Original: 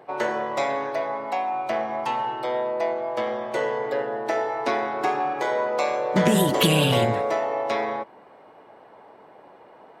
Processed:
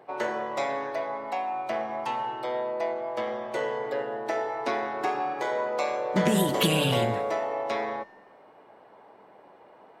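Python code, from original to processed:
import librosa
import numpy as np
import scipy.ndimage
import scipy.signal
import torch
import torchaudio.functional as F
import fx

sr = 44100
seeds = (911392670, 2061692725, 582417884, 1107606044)

y = fx.hum_notches(x, sr, base_hz=50, count=3)
y = fx.comb_fb(y, sr, f0_hz=200.0, decay_s=1.2, harmonics='all', damping=0.0, mix_pct=60)
y = y * librosa.db_to_amplitude(3.5)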